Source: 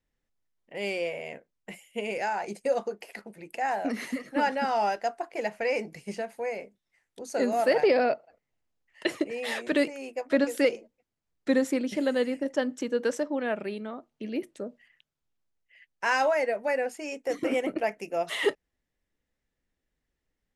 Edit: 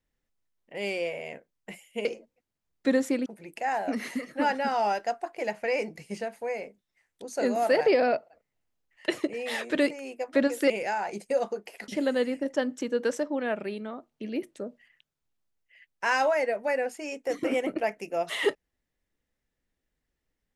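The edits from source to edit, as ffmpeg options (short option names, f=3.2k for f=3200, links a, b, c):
-filter_complex "[0:a]asplit=5[a][b][c][d][e];[a]atrim=end=2.052[f];[b]atrim=start=10.668:end=11.882[g];[c]atrim=start=3.228:end=10.672[h];[d]atrim=start=2.048:end=3.232[i];[e]atrim=start=11.878[j];[f][g]acrossfade=d=0.004:c1=hsin:c2=hsin[k];[k][h]acrossfade=d=0.004:c1=hsin:c2=hsin[l];[l][i]acrossfade=d=0.004:c1=hsin:c2=hsin[m];[m][j]acrossfade=d=0.004:c1=hsin:c2=hsin"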